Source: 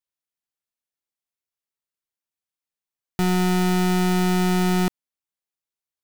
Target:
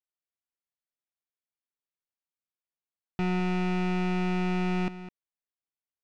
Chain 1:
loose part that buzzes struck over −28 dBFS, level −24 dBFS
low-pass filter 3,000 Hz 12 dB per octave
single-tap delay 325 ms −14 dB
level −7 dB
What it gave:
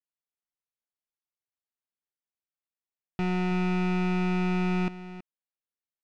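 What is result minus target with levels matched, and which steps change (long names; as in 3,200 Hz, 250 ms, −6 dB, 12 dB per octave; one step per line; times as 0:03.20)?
echo 118 ms late
change: single-tap delay 207 ms −14 dB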